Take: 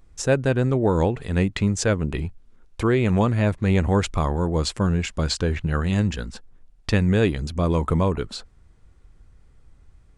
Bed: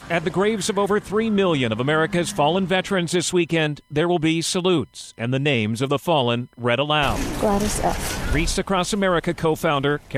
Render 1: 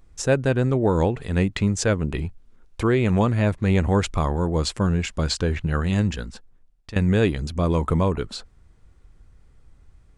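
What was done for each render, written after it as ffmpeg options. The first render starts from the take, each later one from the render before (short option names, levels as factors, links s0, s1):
-filter_complex "[0:a]asplit=2[s0][s1];[s0]atrim=end=6.96,asetpts=PTS-STARTPTS,afade=t=out:st=6.1:d=0.86:silence=0.149624[s2];[s1]atrim=start=6.96,asetpts=PTS-STARTPTS,afade=t=in:d=0.004:c=hsin:silence=0.149624[s3];[s2][s3]concat=n=2:v=0:a=1"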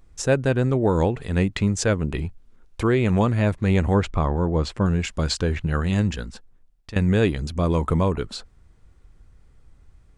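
-filter_complex "[0:a]asettb=1/sr,asplit=3[s0][s1][s2];[s0]atrim=end=3.944[s3];[s1]atrim=start=3.94:end=4.86,asetpts=PTS-STARTPTS,afade=t=in:d=0.004:c=qsin,afade=t=out:st=0.916:d=0.004:c=qsin,aemphasis=mode=reproduction:type=75fm[s4];[s2]atrim=start=4.856[s5];[s3][s4]acrossfade=d=0.004:c1=hsin:c2=qsin[s6];[s6][s5]acrossfade=d=0.004:c1=qsin:c2=hsin"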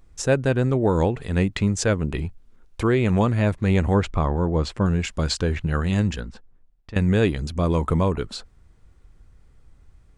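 -filter_complex "[0:a]asettb=1/sr,asplit=3[s0][s1][s2];[s0]atrim=end=6.204[s3];[s1]atrim=start=6.2:end=6.95,asetpts=PTS-STARTPTS,afade=t=in:d=0.004:c=qsin,afade=t=out:st=0.746:d=0.004:c=qsin,aemphasis=mode=reproduction:type=75kf[s4];[s2]atrim=start=6.946[s5];[s3][s4]acrossfade=d=0.004:c1=hsin:c2=qsin[s6];[s6][s5]acrossfade=d=0.004:c1=qsin:c2=hsin"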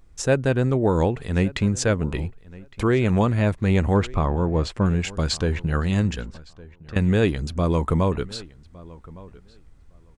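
-filter_complex "[0:a]asplit=2[s0][s1];[s1]adelay=1161,lowpass=f=4000:p=1,volume=0.0891,asplit=2[s2][s3];[s3]adelay=1161,lowpass=f=4000:p=1,volume=0.15[s4];[s0][s2][s4]amix=inputs=3:normalize=0"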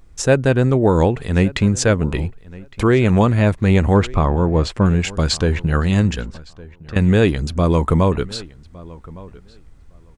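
-af "volume=1.88,alimiter=limit=0.708:level=0:latency=1"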